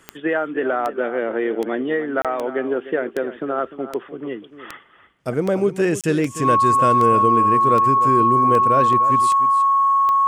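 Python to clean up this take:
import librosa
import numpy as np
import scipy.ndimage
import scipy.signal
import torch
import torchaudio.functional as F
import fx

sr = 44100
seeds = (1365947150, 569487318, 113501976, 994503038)

y = fx.fix_declick_ar(x, sr, threshold=10.0)
y = fx.notch(y, sr, hz=1100.0, q=30.0)
y = fx.fix_interpolate(y, sr, at_s=(2.22, 6.01), length_ms=27.0)
y = fx.fix_echo_inverse(y, sr, delay_ms=300, level_db=-13.5)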